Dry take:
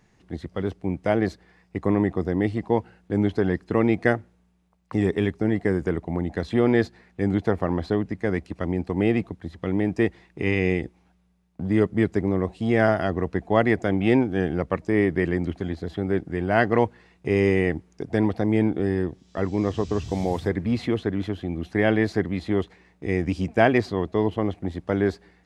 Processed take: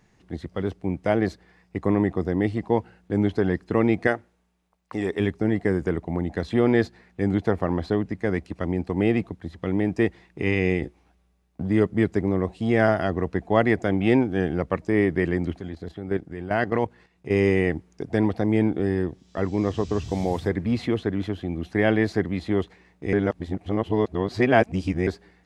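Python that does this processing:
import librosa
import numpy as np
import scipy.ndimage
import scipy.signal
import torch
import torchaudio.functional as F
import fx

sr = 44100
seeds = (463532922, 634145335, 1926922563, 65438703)

y = fx.peak_eq(x, sr, hz=120.0, db=-10.5, octaves=2.2, at=(4.07, 5.2))
y = fx.doubler(y, sr, ms=14.0, db=-5, at=(10.8, 11.63))
y = fx.level_steps(y, sr, step_db=11, at=(15.59, 17.32))
y = fx.edit(y, sr, fx.reverse_span(start_s=23.13, length_s=1.94), tone=tone)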